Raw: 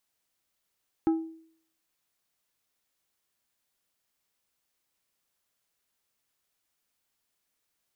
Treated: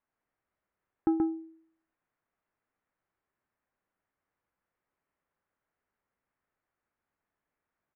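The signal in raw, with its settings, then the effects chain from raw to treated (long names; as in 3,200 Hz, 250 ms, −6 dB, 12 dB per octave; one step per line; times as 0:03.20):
struck glass plate, lowest mode 324 Hz, decay 0.59 s, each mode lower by 11.5 dB, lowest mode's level −18.5 dB
low-pass filter 1,900 Hz 24 dB per octave
single-tap delay 130 ms −3.5 dB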